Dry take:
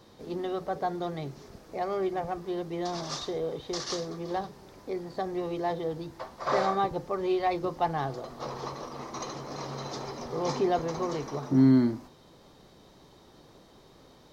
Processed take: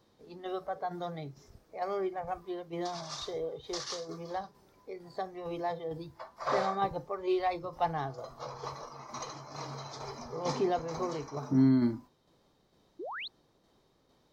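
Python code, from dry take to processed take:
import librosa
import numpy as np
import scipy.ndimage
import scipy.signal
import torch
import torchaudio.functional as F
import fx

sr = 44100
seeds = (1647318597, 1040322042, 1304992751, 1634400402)

y = fx.tremolo_shape(x, sr, shape='saw_down', hz=2.2, depth_pct=40)
y = fx.noise_reduce_blind(y, sr, reduce_db=10)
y = fx.spec_paint(y, sr, seeds[0], shape='rise', start_s=12.99, length_s=0.29, low_hz=300.0, high_hz=4500.0, level_db=-38.0)
y = F.gain(torch.from_numpy(y), -1.5).numpy()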